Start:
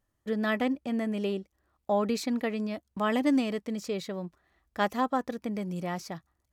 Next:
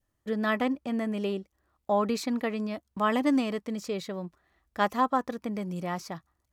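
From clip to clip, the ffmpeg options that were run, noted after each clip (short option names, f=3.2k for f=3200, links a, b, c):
-af "adynamicequalizer=threshold=0.00631:dfrequency=1100:dqfactor=2.2:tfrequency=1100:tqfactor=2.2:attack=5:release=100:ratio=0.375:range=3:mode=boostabove:tftype=bell"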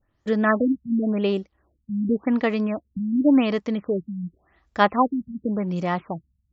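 -af "afftfilt=real='re*lt(b*sr/1024,220*pow(7800/220,0.5+0.5*sin(2*PI*0.9*pts/sr)))':imag='im*lt(b*sr/1024,220*pow(7800/220,0.5+0.5*sin(2*PI*0.9*pts/sr)))':win_size=1024:overlap=0.75,volume=8dB"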